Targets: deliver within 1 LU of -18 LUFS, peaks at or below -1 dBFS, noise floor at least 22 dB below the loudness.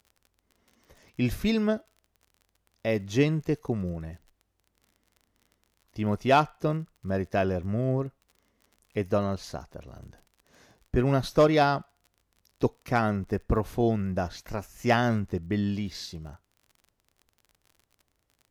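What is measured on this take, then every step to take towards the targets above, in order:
tick rate 37 per s; loudness -28.0 LUFS; peak level -11.5 dBFS; loudness target -18.0 LUFS
-> de-click; trim +10 dB

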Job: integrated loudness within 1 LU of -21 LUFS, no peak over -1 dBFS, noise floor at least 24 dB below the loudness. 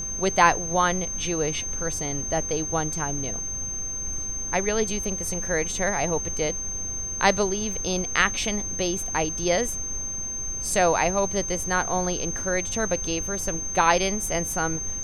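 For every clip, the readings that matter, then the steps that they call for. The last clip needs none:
steady tone 6.3 kHz; tone level -29 dBFS; noise floor -31 dBFS; noise floor target -49 dBFS; loudness -24.5 LUFS; peak level -3.0 dBFS; loudness target -21.0 LUFS
-> band-stop 6.3 kHz, Q 30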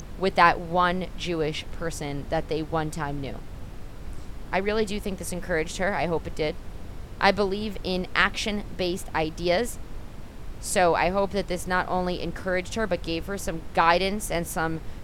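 steady tone not found; noise floor -40 dBFS; noise floor target -50 dBFS
-> noise print and reduce 10 dB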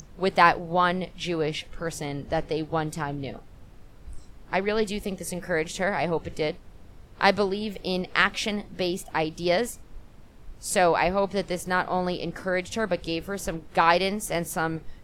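noise floor -49 dBFS; noise floor target -51 dBFS
-> noise print and reduce 6 dB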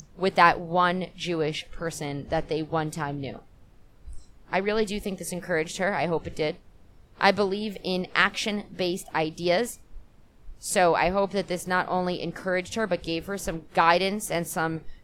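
noise floor -55 dBFS; loudness -26.5 LUFS; peak level -3.5 dBFS; loudness target -21.0 LUFS
-> trim +5.5 dB; peak limiter -1 dBFS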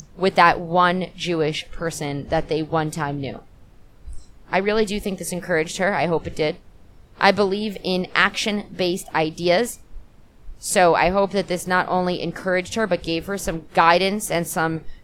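loudness -21.0 LUFS; peak level -1.0 dBFS; noise floor -49 dBFS

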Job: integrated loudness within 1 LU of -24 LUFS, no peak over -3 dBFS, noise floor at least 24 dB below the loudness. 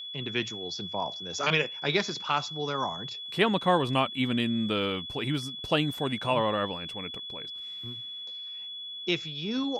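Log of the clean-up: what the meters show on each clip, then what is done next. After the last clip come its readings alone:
steady tone 3.4 kHz; tone level -37 dBFS; loudness -29.5 LUFS; peak level -9.5 dBFS; loudness target -24.0 LUFS
-> band-stop 3.4 kHz, Q 30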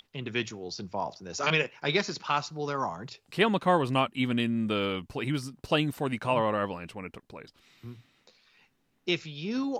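steady tone not found; loudness -29.5 LUFS; peak level -9.5 dBFS; loudness target -24.0 LUFS
-> trim +5.5 dB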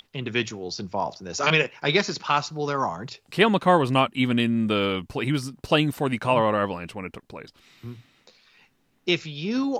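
loudness -24.0 LUFS; peak level -4.0 dBFS; noise floor -67 dBFS

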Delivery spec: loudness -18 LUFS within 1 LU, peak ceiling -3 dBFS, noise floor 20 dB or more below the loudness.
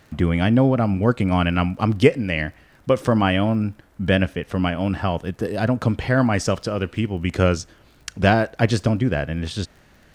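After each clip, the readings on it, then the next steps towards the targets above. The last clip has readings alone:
tick rate 22 per s; loudness -21.0 LUFS; peak level -1.0 dBFS; loudness target -18.0 LUFS
-> de-click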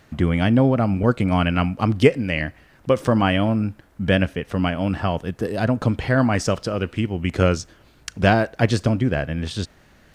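tick rate 0.30 per s; loudness -21.0 LUFS; peak level -1.0 dBFS; loudness target -18.0 LUFS
-> trim +3 dB; peak limiter -3 dBFS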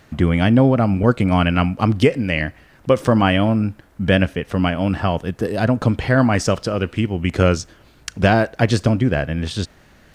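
loudness -18.5 LUFS; peak level -3.0 dBFS; noise floor -51 dBFS

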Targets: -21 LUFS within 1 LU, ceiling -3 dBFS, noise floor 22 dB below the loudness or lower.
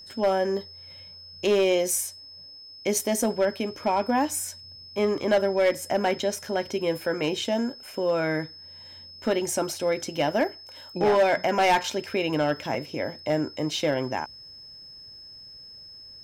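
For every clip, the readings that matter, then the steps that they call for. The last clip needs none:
clipped samples 0.8%; clipping level -15.5 dBFS; steady tone 5.2 kHz; tone level -43 dBFS; loudness -26.0 LUFS; peak level -15.5 dBFS; loudness target -21.0 LUFS
-> clip repair -15.5 dBFS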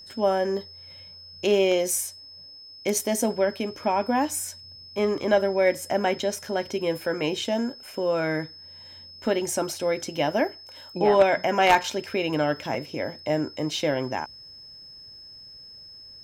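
clipped samples 0.0%; steady tone 5.2 kHz; tone level -43 dBFS
-> band-stop 5.2 kHz, Q 30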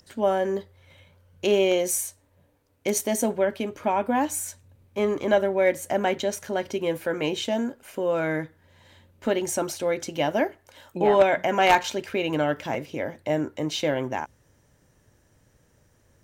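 steady tone not found; loudness -25.5 LUFS; peak level -6.5 dBFS; loudness target -21.0 LUFS
-> trim +4.5 dB; peak limiter -3 dBFS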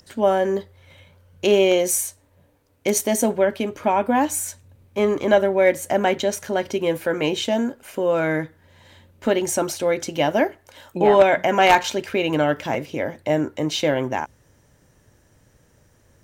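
loudness -21.0 LUFS; peak level -3.0 dBFS; noise floor -59 dBFS

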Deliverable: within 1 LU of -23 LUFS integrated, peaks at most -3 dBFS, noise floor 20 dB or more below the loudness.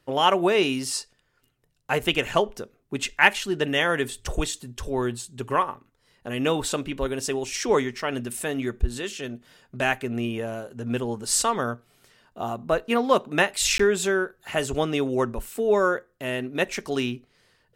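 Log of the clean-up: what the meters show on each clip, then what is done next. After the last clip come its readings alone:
dropouts 1; longest dropout 14 ms; loudness -25.5 LUFS; peak level -2.0 dBFS; loudness target -23.0 LUFS
-> interpolate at 13.78 s, 14 ms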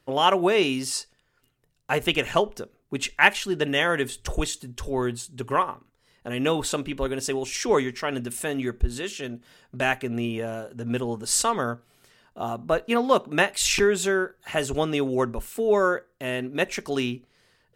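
dropouts 0; loudness -25.5 LUFS; peak level -2.0 dBFS; loudness target -23.0 LUFS
-> trim +2.5 dB; peak limiter -3 dBFS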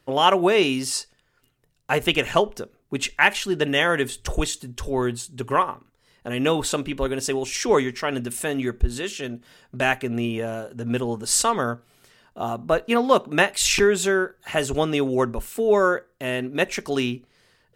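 loudness -23.0 LUFS; peak level -3.0 dBFS; noise floor -65 dBFS

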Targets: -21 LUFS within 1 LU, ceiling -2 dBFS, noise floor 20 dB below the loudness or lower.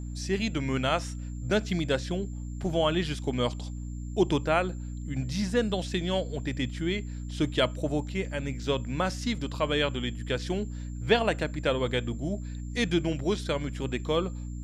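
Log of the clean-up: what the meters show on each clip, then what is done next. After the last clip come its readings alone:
hum 60 Hz; highest harmonic 300 Hz; hum level -34 dBFS; steady tone 7.3 kHz; tone level -56 dBFS; loudness -29.5 LUFS; peak level -9.5 dBFS; loudness target -21.0 LUFS
-> hum notches 60/120/180/240/300 Hz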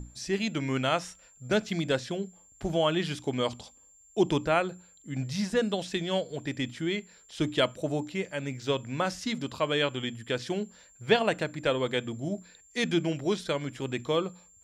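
hum not found; steady tone 7.3 kHz; tone level -56 dBFS
-> band-stop 7.3 kHz, Q 30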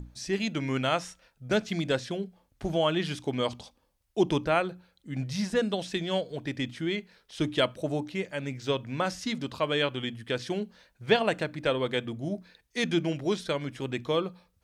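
steady tone not found; loudness -30.0 LUFS; peak level -9.0 dBFS; loudness target -21.0 LUFS
-> trim +9 dB; peak limiter -2 dBFS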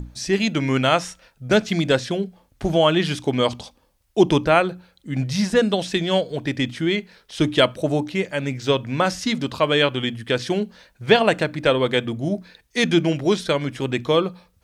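loudness -21.0 LUFS; peak level -2.0 dBFS; noise floor -62 dBFS

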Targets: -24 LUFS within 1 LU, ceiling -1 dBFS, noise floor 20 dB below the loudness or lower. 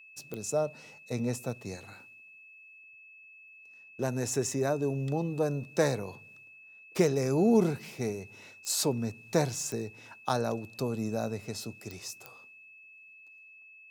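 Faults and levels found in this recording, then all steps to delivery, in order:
clicks found 5; steady tone 2.6 kHz; tone level -51 dBFS; loudness -31.5 LUFS; peak level -12.0 dBFS; loudness target -24.0 LUFS
-> de-click; band-stop 2.6 kHz, Q 30; trim +7.5 dB

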